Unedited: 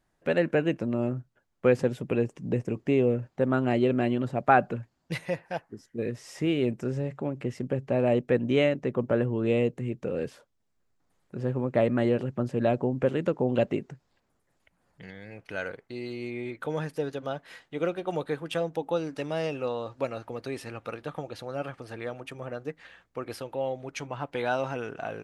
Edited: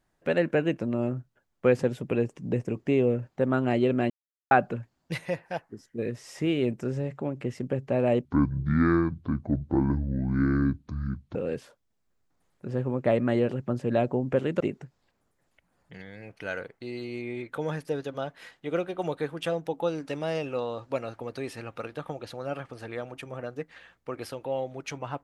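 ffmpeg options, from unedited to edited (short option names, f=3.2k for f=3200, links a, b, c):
-filter_complex "[0:a]asplit=6[a][b][c][d][e][f];[a]atrim=end=4.1,asetpts=PTS-STARTPTS,afade=t=out:st=4.096:d=0.004:c=hsin[g];[b]atrim=start=4.1:end=4.51,asetpts=PTS-STARTPTS,volume=0[h];[c]atrim=start=4.51:end=8.254,asetpts=PTS-STARTPTS,afade=t=in:d=0.004:c=hsin[i];[d]atrim=start=8.25:end=10.05,asetpts=PTS-STARTPTS,asetrate=25578,aresample=44100,atrim=end_sample=136862,asetpts=PTS-STARTPTS[j];[e]atrim=start=10.046:end=13.302[k];[f]atrim=start=13.688[l];[g][h][i]concat=n=3:v=0:a=1[m];[m][j]acrossfade=d=0.004:c1=hsin:c2=hsin[n];[n][k]acrossfade=d=0.004:c1=hsin:c2=hsin[o];[o][l]acrossfade=d=0.004:c1=hsin:c2=hsin"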